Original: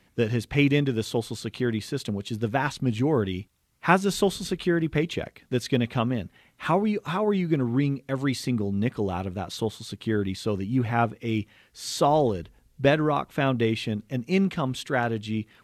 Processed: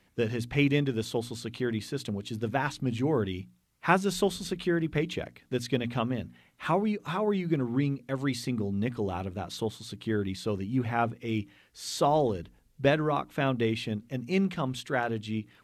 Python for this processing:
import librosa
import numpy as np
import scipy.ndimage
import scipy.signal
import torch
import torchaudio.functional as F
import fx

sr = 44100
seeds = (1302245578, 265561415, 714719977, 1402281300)

y = fx.hum_notches(x, sr, base_hz=60, count=5)
y = fx.end_taper(y, sr, db_per_s=420.0)
y = F.gain(torch.from_numpy(y), -3.5).numpy()